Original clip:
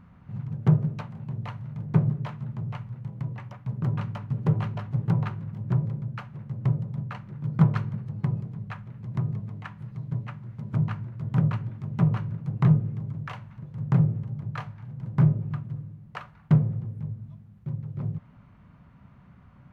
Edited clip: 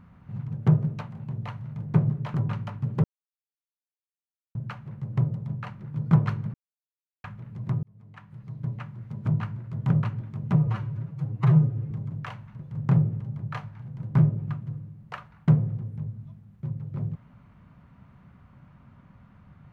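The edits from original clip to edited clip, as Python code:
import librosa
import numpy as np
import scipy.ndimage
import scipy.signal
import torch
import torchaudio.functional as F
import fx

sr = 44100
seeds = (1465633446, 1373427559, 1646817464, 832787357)

y = fx.edit(x, sr, fx.cut(start_s=2.34, length_s=1.48),
    fx.silence(start_s=4.52, length_s=1.51),
    fx.silence(start_s=8.02, length_s=0.7),
    fx.fade_in_span(start_s=9.31, length_s=0.95),
    fx.stretch_span(start_s=12.04, length_s=0.9, factor=1.5), tone=tone)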